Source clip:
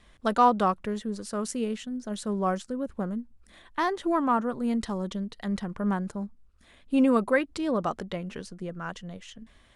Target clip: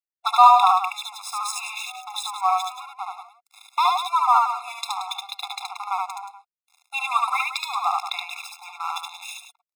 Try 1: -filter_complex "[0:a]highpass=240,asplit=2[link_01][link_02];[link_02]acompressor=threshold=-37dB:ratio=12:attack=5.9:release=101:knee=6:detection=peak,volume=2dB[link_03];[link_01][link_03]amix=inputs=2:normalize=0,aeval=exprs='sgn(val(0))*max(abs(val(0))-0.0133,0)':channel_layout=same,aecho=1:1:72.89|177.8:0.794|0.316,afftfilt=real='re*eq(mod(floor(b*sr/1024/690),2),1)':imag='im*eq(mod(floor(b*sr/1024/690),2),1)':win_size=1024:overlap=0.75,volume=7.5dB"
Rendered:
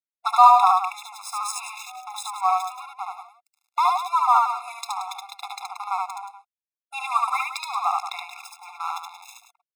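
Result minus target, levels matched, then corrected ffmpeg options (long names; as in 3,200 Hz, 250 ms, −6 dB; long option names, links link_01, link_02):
4,000 Hz band −6.5 dB
-filter_complex "[0:a]highpass=240,equalizer=frequency=3200:width_type=o:width=0.5:gain=13,asplit=2[link_01][link_02];[link_02]acompressor=threshold=-37dB:ratio=12:attack=5.9:release=101:knee=6:detection=peak,volume=2dB[link_03];[link_01][link_03]amix=inputs=2:normalize=0,aeval=exprs='sgn(val(0))*max(abs(val(0))-0.0133,0)':channel_layout=same,aecho=1:1:72.89|177.8:0.794|0.316,afftfilt=real='re*eq(mod(floor(b*sr/1024/690),2),1)':imag='im*eq(mod(floor(b*sr/1024/690),2),1)':win_size=1024:overlap=0.75,volume=7.5dB"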